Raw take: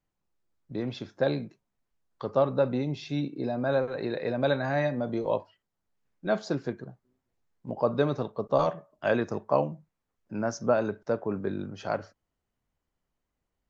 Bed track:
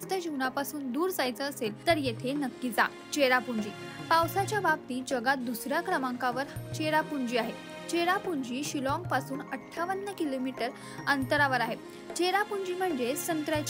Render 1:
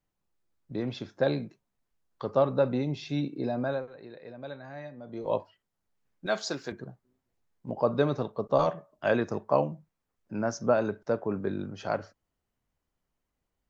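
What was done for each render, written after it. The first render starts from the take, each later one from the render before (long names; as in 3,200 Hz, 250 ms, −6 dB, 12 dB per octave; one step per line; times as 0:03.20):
0:03.61–0:05.35: duck −15 dB, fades 0.38 s quadratic
0:06.26–0:06.72: spectral tilt +3.5 dB per octave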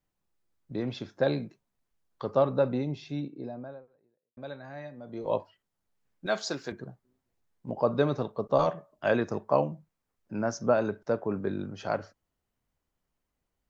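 0:02.36–0:04.37: fade out and dull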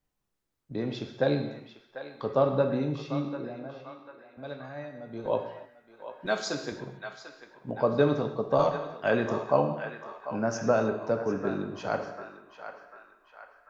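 feedback echo with a band-pass in the loop 744 ms, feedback 57%, band-pass 1,600 Hz, level −8.5 dB
reverb whose tail is shaped and stops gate 330 ms falling, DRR 5 dB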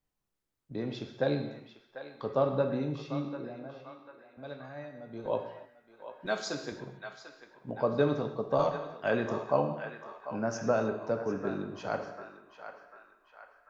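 level −3.5 dB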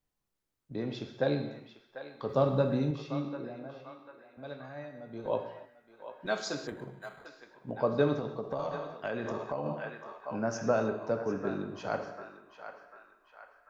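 0:02.29–0:02.91: bass and treble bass +6 dB, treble +9 dB
0:06.67–0:07.26: linearly interpolated sample-rate reduction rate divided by 8×
0:08.19–0:09.66: downward compressor, threshold −30 dBFS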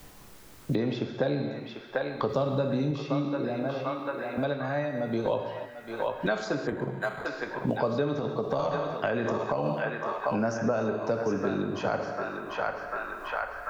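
in parallel at +0.5 dB: brickwall limiter −25.5 dBFS, peak gain reduction 11 dB
on the sum: multiband upward and downward compressor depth 100%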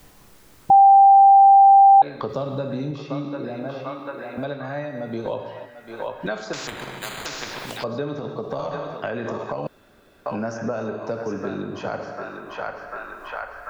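0:00.70–0:02.02: beep over 788 Hz −7.5 dBFS
0:06.53–0:07.84: every bin compressed towards the loudest bin 4 to 1
0:09.67–0:10.26: fill with room tone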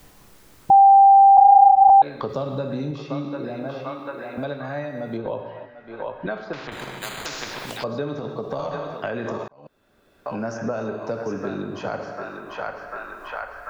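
0:01.37–0:01.90: linear-prediction vocoder at 8 kHz whisper
0:05.17–0:06.72: high-frequency loss of the air 290 metres
0:09.48–0:10.53: fade in linear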